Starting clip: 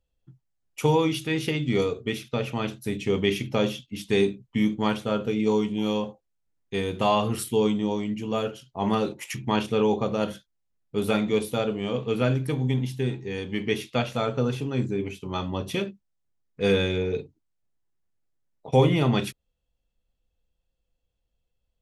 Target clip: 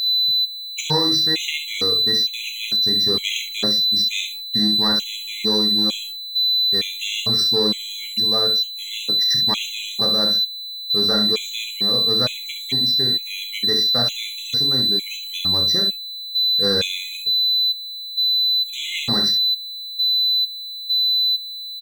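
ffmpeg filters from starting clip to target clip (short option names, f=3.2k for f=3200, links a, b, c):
-filter_complex "[0:a]aeval=exprs='val(0)+0.0355*sin(2*PI*4000*n/s)':c=same,aresample=16000,asoftclip=type=tanh:threshold=-15.5dB,aresample=44100,aecho=1:1:34|66:0.355|0.335,asplit=2[a][b];[b]aeval=exprs='sgn(val(0))*max(abs(val(0))-0.00891,0)':c=same,volume=-4.5dB[c];[a][c]amix=inputs=2:normalize=0,crystalizer=i=6.5:c=0,afftfilt=real='re*gt(sin(2*PI*1.1*pts/sr)*(1-2*mod(floor(b*sr/1024/2000),2)),0)':imag='im*gt(sin(2*PI*1.1*pts/sr)*(1-2*mod(floor(b*sr/1024/2000),2)),0)':win_size=1024:overlap=0.75,volume=-4.5dB"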